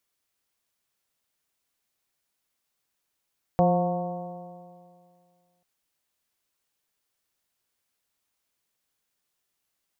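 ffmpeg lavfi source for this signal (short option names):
-f lavfi -i "aevalsrc='0.1*pow(10,-3*t/2.18)*sin(2*PI*174.28*t)+0.0335*pow(10,-3*t/2.18)*sin(2*PI*350.22*t)+0.0891*pow(10,-3*t/2.18)*sin(2*PI*529.46*t)+0.0944*pow(10,-3*t/2.18)*sin(2*PI*713.6*t)+0.0266*pow(10,-3*t/2.18)*sin(2*PI*904.13*t)+0.015*pow(10,-3*t/2.18)*sin(2*PI*1102.5*t)':d=2.04:s=44100"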